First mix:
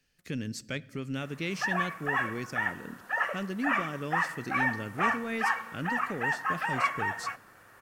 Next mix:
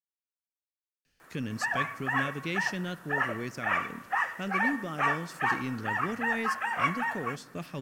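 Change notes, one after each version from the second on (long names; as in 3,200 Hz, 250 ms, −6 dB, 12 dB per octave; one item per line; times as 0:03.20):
speech: entry +1.05 s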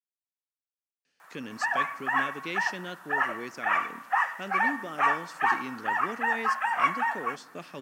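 speech: add band-pass filter 280–8,000 Hz
background: add high-pass with resonance 830 Hz, resonance Q 1.8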